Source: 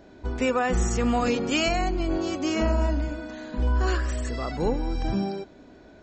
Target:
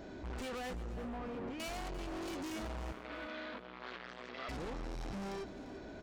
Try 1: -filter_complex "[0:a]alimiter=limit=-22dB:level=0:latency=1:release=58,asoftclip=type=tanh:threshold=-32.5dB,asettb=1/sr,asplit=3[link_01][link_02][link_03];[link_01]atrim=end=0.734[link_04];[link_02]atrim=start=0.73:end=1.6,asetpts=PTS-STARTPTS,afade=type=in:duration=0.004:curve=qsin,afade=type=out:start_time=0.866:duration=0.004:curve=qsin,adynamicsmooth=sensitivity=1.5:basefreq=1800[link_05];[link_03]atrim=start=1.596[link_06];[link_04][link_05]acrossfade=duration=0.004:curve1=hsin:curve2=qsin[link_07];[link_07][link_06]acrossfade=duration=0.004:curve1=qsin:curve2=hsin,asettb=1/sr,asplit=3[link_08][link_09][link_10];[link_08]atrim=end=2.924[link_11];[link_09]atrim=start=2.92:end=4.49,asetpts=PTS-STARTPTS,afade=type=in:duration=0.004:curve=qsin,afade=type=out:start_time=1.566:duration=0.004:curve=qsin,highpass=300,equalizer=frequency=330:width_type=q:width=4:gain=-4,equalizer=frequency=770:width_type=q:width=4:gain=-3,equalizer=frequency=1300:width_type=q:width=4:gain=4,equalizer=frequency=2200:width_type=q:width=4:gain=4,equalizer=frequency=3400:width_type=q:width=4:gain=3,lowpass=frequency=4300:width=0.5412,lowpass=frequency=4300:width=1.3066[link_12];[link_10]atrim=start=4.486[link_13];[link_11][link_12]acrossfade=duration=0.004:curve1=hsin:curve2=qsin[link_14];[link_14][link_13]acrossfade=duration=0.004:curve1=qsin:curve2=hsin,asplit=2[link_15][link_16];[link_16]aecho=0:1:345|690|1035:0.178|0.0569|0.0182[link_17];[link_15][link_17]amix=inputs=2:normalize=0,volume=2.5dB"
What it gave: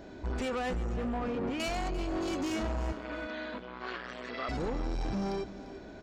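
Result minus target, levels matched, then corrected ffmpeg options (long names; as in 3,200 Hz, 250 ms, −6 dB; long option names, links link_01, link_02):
soft clipping: distortion −5 dB
-filter_complex "[0:a]alimiter=limit=-22dB:level=0:latency=1:release=58,asoftclip=type=tanh:threshold=-43dB,asettb=1/sr,asplit=3[link_01][link_02][link_03];[link_01]atrim=end=0.734[link_04];[link_02]atrim=start=0.73:end=1.6,asetpts=PTS-STARTPTS,afade=type=in:duration=0.004:curve=qsin,afade=type=out:start_time=0.866:duration=0.004:curve=qsin,adynamicsmooth=sensitivity=1.5:basefreq=1800[link_05];[link_03]atrim=start=1.596[link_06];[link_04][link_05]acrossfade=duration=0.004:curve1=hsin:curve2=qsin[link_07];[link_07][link_06]acrossfade=duration=0.004:curve1=qsin:curve2=hsin,asettb=1/sr,asplit=3[link_08][link_09][link_10];[link_08]atrim=end=2.924[link_11];[link_09]atrim=start=2.92:end=4.49,asetpts=PTS-STARTPTS,afade=type=in:duration=0.004:curve=qsin,afade=type=out:start_time=1.566:duration=0.004:curve=qsin,highpass=300,equalizer=frequency=330:width_type=q:width=4:gain=-4,equalizer=frequency=770:width_type=q:width=4:gain=-3,equalizer=frequency=1300:width_type=q:width=4:gain=4,equalizer=frequency=2200:width_type=q:width=4:gain=4,equalizer=frequency=3400:width_type=q:width=4:gain=3,lowpass=frequency=4300:width=0.5412,lowpass=frequency=4300:width=1.3066[link_12];[link_10]atrim=start=4.486[link_13];[link_11][link_12]acrossfade=duration=0.004:curve1=hsin:curve2=qsin[link_14];[link_14][link_13]acrossfade=duration=0.004:curve1=qsin:curve2=hsin,asplit=2[link_15][link_16];[link_16]aecho=0:1:345|690|1035:0.178|0.0569|0.0182[link_17];[link_15][link_17]amix=inputs=2:normalize=0,volume=2.5dB"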